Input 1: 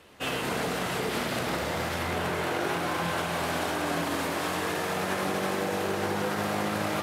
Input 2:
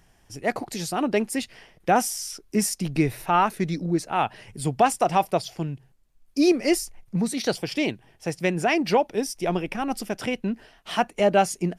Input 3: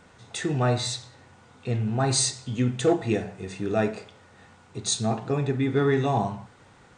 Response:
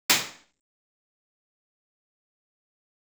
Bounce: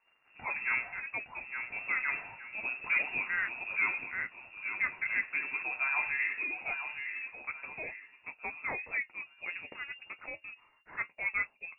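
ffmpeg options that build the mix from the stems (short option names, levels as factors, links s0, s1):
-filter_complex "[1:a]volume=0.422[s0];[2:a]highpass=150,aeval=exprs='sgn(val(0))*max(abs(val(0))-0.00266,0)':c=same,adelay=50,volume=1,asplit=2[s1][s2];[s2]volume=0.398,aecho=0:1:864|1728|2592|3456|4320:1|0.39|0.152|0.0593|0.0231[s3];[s0][s1][s3]amix=inputs=3:normalize=0,equalizer=f=170:w=0.46:g=-9,flanger=delay=7.9:depth=4.8:regen=-50:speed=1.3:shape=sinusoidal,lowpass=f=2400:t=q:w=0.5098,lowpass=f=2400:t=q:w=0.6013,lowpass=f=2400:t=q:w=0.9,lowpass=f=2400:t=q:w=2.563,afreqshift=-2800"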